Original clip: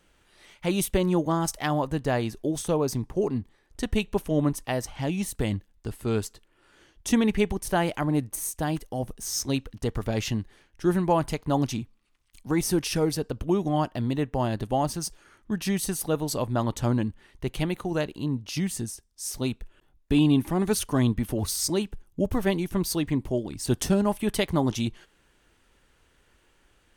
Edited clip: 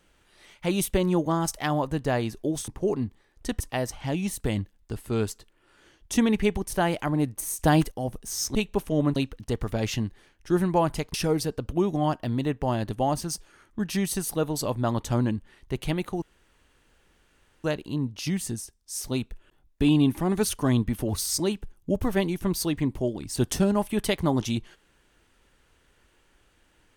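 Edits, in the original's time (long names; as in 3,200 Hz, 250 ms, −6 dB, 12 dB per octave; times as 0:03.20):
0:02.68–0:03.02: remove
0:03.94–0:04.55: move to 0:09.50
0:08.54–0:08.86: clip gain +8 dB
0:11.48–0:12.86: remove
0:17.94: splice in room tone 1.42 s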